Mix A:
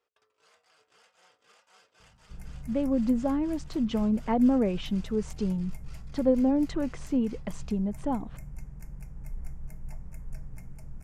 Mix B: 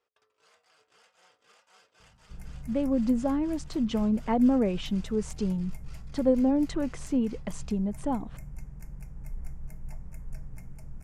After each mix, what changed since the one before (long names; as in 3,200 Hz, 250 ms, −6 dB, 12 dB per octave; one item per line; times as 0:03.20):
speech: remove high-frequency loss of the air 57 metres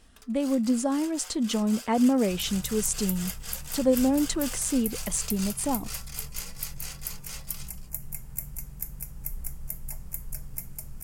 speech: entry −2.40 s
first sound +9.0 dB
master: remove head-to-tape spacing loss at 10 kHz 23 dB